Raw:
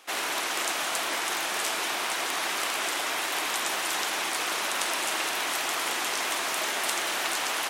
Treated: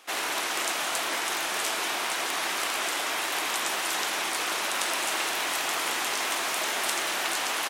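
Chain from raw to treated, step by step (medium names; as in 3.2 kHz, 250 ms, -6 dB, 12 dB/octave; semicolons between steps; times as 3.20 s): doubling 21 ms -14 dB; 4.60–7.06 s: bit-crushed delay 96 ms, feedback 80%, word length 7-bit, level -15 dB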